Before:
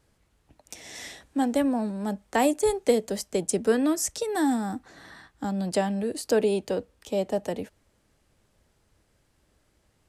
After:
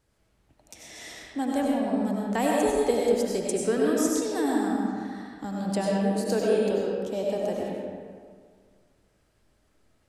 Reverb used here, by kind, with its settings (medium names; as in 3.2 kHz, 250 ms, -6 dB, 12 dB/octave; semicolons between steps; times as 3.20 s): algorithmic reverb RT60 1.9 s, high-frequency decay 0.55×, pre-delay 55 ms, DRR -3.5 dB; trim -5 dB